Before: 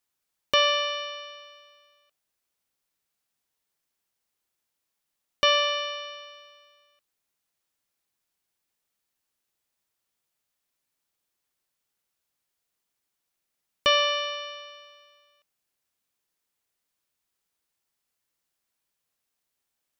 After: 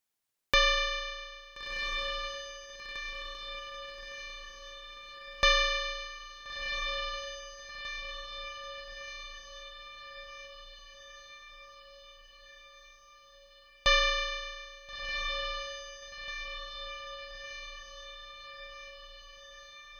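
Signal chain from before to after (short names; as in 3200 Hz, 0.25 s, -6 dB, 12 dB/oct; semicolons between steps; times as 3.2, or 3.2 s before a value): ring modulator 610 Hz; diffused feedback echo 1.393 s, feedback 62%, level -7 dB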